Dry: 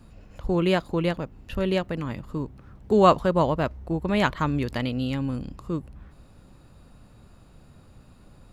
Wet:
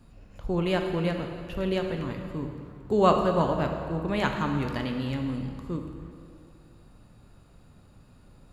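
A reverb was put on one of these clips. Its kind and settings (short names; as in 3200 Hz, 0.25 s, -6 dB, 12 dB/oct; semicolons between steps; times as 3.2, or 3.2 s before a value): plate-style reverb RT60 2.3 s, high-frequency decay 0.8×, DRR 3.5 dB; gain -4.5 dB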